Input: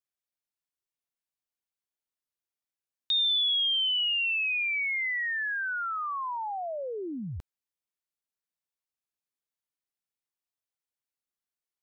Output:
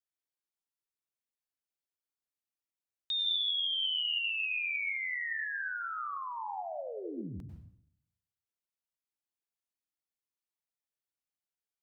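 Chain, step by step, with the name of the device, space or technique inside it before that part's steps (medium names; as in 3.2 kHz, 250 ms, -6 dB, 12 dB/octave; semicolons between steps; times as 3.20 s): bathroom (reverberation RT60 0.65 s, pre-delay 91 ms, DRR 3.5 dB); trim -7 dB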